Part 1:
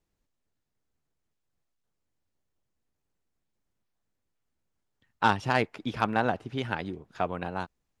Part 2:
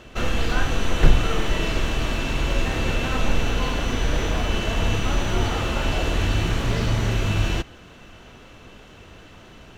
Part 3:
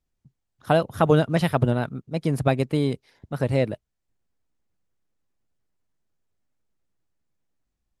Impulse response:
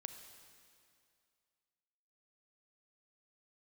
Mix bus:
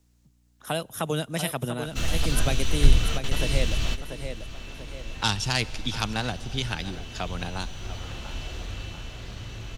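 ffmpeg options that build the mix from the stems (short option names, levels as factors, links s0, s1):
-filter_complex "[0:a]equalizer=f=6000:w=0.66:g=5,aeval=exprs='val(0)+0.000447*(sin(2*PI*60*n/s)+sin(2*PI*2*60*n/s)/2+sin(2*PI*3*60*n/s)/3+sin(2*PI*4*60*n/s)/4+sin(2*PI*5*60*n/s)/5)':c=same,volume=1.19,asplit=3[s0][s1][s2];[s1]volume=0.631[s3];[s2]volume=0.158[s4];[1:a]adynamicequalizer=threshold=0.00355:dfrequency=6200:dqfactor=0.7:tfrequency=6200:tqfactor=0.7:attack=5:release=100:ratio=0.375:range=4:mode=cutabove:tftype=highshelf,adelay=1800,volume=0.75,afade=t=out:st=7.64:d=0.74:silence=0.237137,asplit=2[s5][s6];[s6]volume=0.2[s7];[2:a]highpass=250,equalizer=f=4500:t=o:w=0.35:g=-11.5,volume=1.33,asplit=4[s8][s9][s10][s11];[s9]volume=0.106[s12];[s10]volume=0.355[s13];[s11]apad=whole_len=510550[s14];[s5][s14]sidechaingate=range=0.0224:threshold=0.002:ratio=16:detection=peak[s15];[3:a]atrim=start_sample=2205[s16];[s3][s12]amix=inputs=2:normalize=0[s17];[s17][s16]afir=irnorm=-1:irlink=0[s18];[s4][s7][s13]amix=inputs=3:normalize=0,aecho=0:1:690|1380|2070|2760:1|0.31|0.0961|0.0298[s19];[s0][s15][s8][s18][s19]amix=inputs=5:normalize=0,dynaudnorm=f=310:g=11:m=5.62,highshelf=f=3000:g=7.5,acrossover=split=160|3000[s20][s21][s22];[s21]acompressor=threshold=0.00224:ratio=1.5[s23];[s20][s23][s22]amix=inputs=3:normalize=0"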